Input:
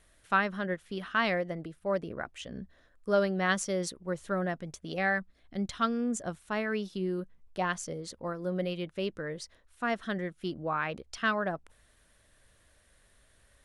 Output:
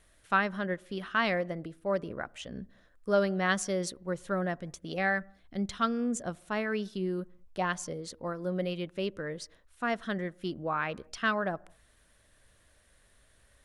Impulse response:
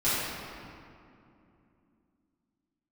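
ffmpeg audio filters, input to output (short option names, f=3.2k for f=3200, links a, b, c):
-filter_complex "[0:a]asplit=2[a][b];[1:a]atrim=start_sample=2205,afade=t=out:st=0.27:d=0.01,atrim=end_sample=12348,lowpass=1.4k[c];[b][c]afir=irnorm=-1:irlink=0,volume=-34.5dB[d];[a][d]amix=inputs=2:normalize=0"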